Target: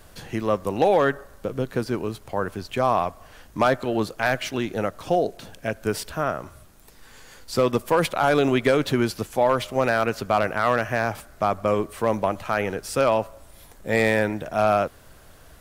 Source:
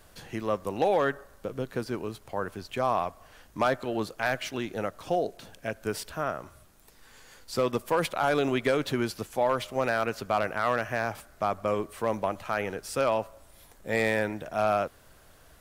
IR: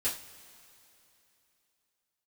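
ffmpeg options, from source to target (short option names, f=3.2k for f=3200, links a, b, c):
-af "lowshelf=f=330:g=3,volume=5dB"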